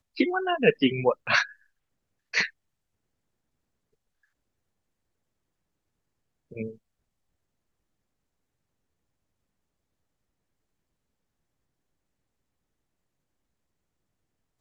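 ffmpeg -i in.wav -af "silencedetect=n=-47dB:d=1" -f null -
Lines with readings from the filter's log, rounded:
silence_start: 2.50
silence_end: 6.51 | silence_duration: 4.02
silence_start: 6.76
silence_end: 14.61 | silence_duration: 7.85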